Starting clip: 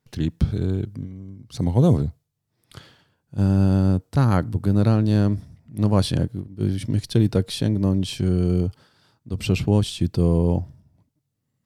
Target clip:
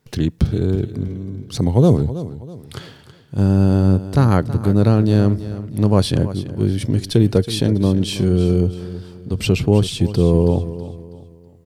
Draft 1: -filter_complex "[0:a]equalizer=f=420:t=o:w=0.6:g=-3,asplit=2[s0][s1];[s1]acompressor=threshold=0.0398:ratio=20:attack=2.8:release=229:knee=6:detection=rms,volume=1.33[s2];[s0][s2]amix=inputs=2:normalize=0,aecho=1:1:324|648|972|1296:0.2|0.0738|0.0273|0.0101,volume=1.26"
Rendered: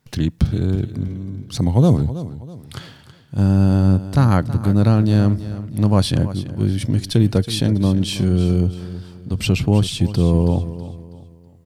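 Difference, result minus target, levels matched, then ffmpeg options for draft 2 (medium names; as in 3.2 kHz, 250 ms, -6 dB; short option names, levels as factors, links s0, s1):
500 Hz band -4.5 dB
-filter_complex "[0:a]equalizer=f=420:t=o:w=0.6:g=4.5,asplit=2[s0][s1];[s1]acompressor=threshold=0.0398:ratio=20:attack=2.8:release=229:knee=6:detection=rms,volume=1.33[s2];[s0][s2]amix=inputs=2:normalize=0,aecho=1:1:324|648|972|1296:0.2|0.0738|0.0273|0.0101,volume=1.26"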